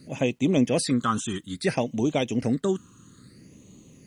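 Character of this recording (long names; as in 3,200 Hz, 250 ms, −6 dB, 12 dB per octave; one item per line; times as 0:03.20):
phaser sweep stages 8, 0.6 Hz, lowest notch 620–1,500 Hz
a quantiser's noise floor 12 bits, dither none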